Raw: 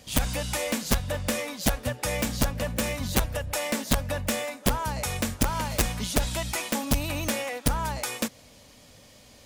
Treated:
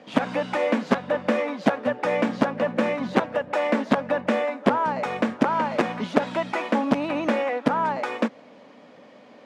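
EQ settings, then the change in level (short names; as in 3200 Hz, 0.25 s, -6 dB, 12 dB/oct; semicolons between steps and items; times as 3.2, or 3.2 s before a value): HPF 210 Hz 24 dB/oct; LPF 1600 Hz 12 dB/oct; +8.5 dB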